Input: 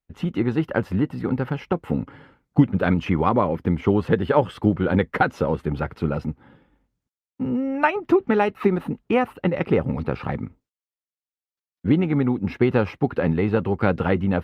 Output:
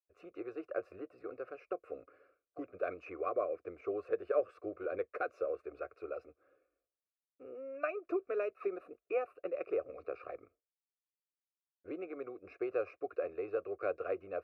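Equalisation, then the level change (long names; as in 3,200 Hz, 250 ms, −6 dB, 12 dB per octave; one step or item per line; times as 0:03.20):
formant filter a
phaser with its sweep stopped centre 360 Hz, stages 4
phaser with its sweep stopped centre 860 Hz, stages 6
+4.5 dB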